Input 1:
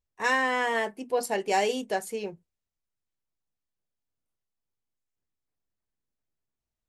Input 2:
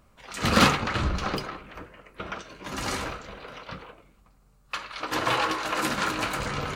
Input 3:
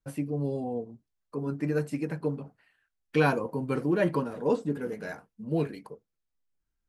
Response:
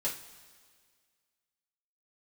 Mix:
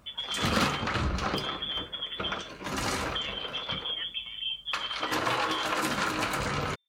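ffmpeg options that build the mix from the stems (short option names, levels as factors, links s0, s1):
-filter_complex "[1:a]highpass=45,volume=1.26[s0];[2:a]aecho=1:1:2.3:0.65,volume=1,lowpass=f=3100:t=q:w=0.5098,lowpass=f=3100:t=q:w=0.6013,lowpass=f=3100:t=q:w=0.9,lowpass=f=3100:t=q:w=2.563,afreqshift=-3600,acompressor=threshold=0.0251:ratio=6,volume=1[s1];[s0][s1]amix=inputs=2:normalize=0,acompressor=threshold=0.0447:ratio=2.5"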